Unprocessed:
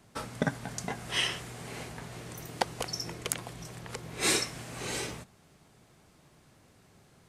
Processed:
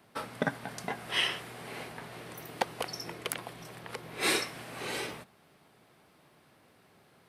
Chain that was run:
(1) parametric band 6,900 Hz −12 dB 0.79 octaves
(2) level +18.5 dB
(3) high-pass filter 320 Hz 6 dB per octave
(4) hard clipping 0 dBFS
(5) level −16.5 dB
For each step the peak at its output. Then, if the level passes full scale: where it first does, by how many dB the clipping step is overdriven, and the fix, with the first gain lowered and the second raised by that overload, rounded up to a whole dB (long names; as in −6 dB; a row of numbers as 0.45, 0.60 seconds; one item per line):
−12.5, +6.0, +7.5, 0.0, −16.5 dBFS
step 2, 7.5 dB
step 2 +10.5 dB, step 5 −8.5 dB